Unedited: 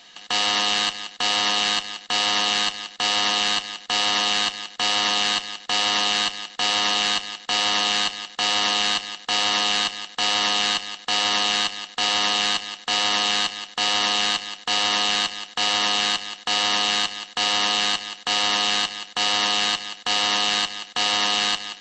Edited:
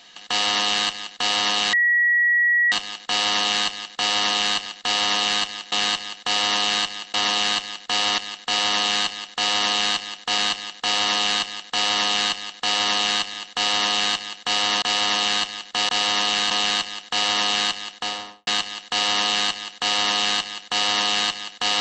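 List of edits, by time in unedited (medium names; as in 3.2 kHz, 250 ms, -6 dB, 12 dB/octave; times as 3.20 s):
1.73 s: add tone 1.92 kHz -15 dBFS 0.99 s
3.67–5.15 s: swap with 11.79–12.85 s
6.57–7.19 s: swap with 13.92–14.96 s
8.83–9.39 s: loop, 2 plays
16.34–16.92 s: studio fade out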